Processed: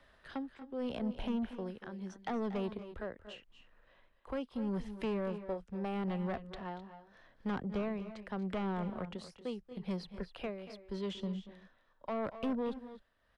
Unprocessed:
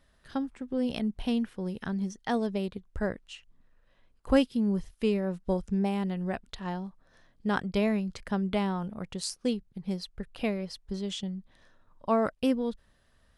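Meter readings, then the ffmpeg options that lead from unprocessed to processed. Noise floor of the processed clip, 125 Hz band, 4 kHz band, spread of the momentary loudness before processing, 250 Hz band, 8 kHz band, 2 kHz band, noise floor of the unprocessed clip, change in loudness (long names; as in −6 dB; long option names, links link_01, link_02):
−70 dBFS, −7.5 dB, −10.5 dB, 10 LU, −8.5 dB, below −15 dB, −9.0 dB, −66 dBFS, −8.5 dB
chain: -filter_complex "[0:a]tremolo=f=0.8:d=0.8,acrossover=split=210|870[link_01][link_02][link_03];[link_01]acontrast=88[link_04];[link_02]alimiter=level_in=7.5dB:limit=-24dB:level=0:latency=1:release=116,volume=-7.5dB[link_05];[link_03]acompressor=threshold=-52dB:ratio=4[link_06];[link_04][link_05][link_06]amix=inputs=3:normalize=0,acrossover=split=350 3800:gain=0.158 1 0.2[link_07][link_08][link_09];[link_07][link_08][link_09]amix=inputs=3:normalize=0,asoftclip=type=tanh:threshold=-37dB,aecho=1:1:234|258:0.188|0.2,volume=6.5dB"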